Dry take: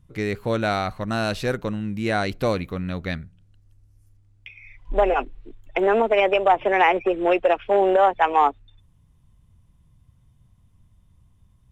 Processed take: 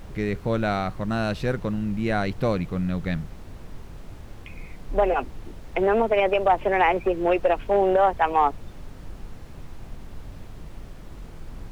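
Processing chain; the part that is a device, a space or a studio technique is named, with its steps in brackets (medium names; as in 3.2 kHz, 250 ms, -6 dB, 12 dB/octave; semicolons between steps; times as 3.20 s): car interior (peaking EQ 160 Hz +7.5 dB 0.71 oct; treble shelf 4.2 kHz -8 dB; brown noise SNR 11 dB); trim -2 dB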